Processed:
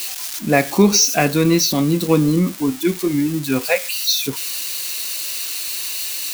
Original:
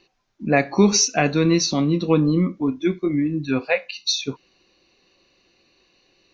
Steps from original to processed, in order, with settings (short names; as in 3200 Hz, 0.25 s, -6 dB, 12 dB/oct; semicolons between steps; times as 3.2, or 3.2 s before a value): switching spikes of -19 dBFS; gain +2.5 dB